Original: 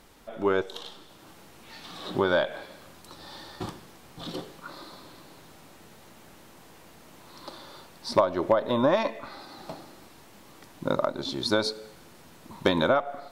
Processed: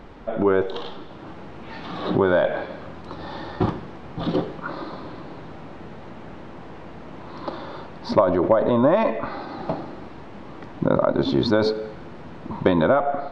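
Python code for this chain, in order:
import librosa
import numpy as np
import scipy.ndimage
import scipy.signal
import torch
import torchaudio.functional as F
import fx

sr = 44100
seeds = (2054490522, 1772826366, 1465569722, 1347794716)

p1 = fx.spacing_loss(x, sr, db_at_10k=38)
p2 = fx.over_compress(p1, sr, threshold_db=-33.0, ratio=-0.5)
p3 = p1 + (p2 * librosa.db_to_amplitude(-0.5))
y = p3 * librosa.db_to_amplitude(6.5)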